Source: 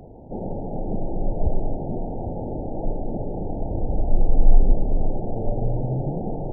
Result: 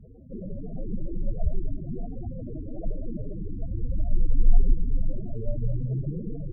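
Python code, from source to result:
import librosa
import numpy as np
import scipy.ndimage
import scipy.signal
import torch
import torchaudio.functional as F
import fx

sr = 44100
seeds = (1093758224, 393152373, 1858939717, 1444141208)

y = fx.spec_topn(x, sr, count=8)
y = fx.cheby_harmonics(y, sr, harmonics=(5,), levels_db=(-38,), full_scale_db=-3.0)
y = y * 10.0 ** (-3.0 / 20.0)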